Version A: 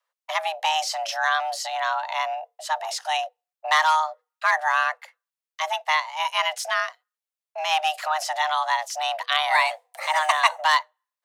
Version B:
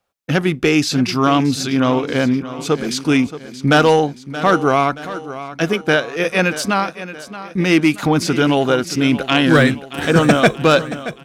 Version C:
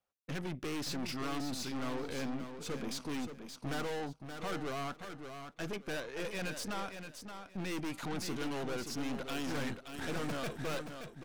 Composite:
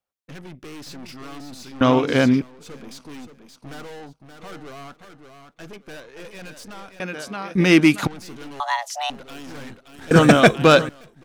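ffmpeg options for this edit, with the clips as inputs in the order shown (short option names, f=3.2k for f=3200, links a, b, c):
-filter_complex "[1:a]asplit=3[a][b][c];[2:a]asplit=5[d][e][f][g][h];[d]atrim=end=1.812[i];[a]atrim=start=1.808:end=2.422[j];[e]atrim=start=2.418:end=7.002[k];[b]atrim=start=6.998:end=8.072[l];[f]atrim=start=8.068:end=8.602[m];[0:a]atrim=start=8.598:end=9.102[n];[g]atrim=start=9.098:end=10.112[o];[c]atrim=start=10.108:end=10.892[p];[h]atrim=start=10.888[q];[i][j]acrossfade=d=0.004:c1=hsin:c2=hsin[r];[r][k]acrossfade=d=0.004:c1=hsin:c2=hsin[s];[s][l]acrossfade=d=0.004:c1=hsin:c2=hsin[t];[t][m]acrossfade=d=0.004:c1=hsin:c2=hsin[u];[u][n]acrossfade=d=0.004:c1=hsin:c2=hsin[v];[v][o]acrossfade=d=0.004:c1=hsin:c2=hsin[w];[w][p]acrossfade=d=0.004:c1=hsin:c2=hsin[x];[x][q]acrossfade=d=0.004:c1=hsin:c2=hsin"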